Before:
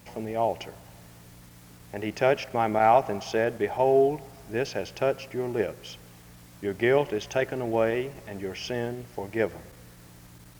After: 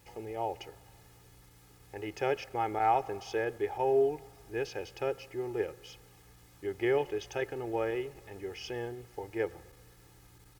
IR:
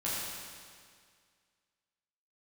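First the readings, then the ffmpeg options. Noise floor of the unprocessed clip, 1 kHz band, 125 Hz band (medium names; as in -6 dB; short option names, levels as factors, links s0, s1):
-51 dBFS, -6.0 dB, -9.0 dB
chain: -af "aecho=1:1:2.4:0.65,volume=0.355"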